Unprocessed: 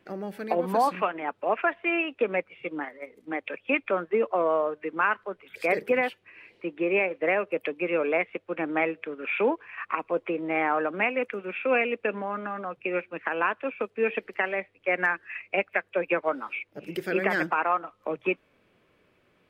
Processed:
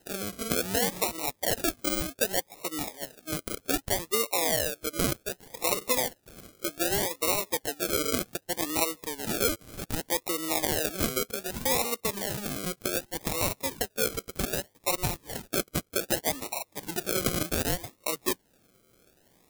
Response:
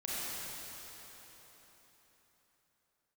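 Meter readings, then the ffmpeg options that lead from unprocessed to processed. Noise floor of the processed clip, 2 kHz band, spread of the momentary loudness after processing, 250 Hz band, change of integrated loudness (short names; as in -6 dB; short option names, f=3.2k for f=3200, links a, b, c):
-68 dBFS, -7.5 dB, 8 LU, -2.0 dB, -1.0 dB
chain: -af "acrusher=samples=38:mix=1:aa=0.000001:lfo=1:lforange=22.8:lforate=0.65,crystalizer=i=3:c=0,acompressor=threshold=-32dB:ratio=1.5"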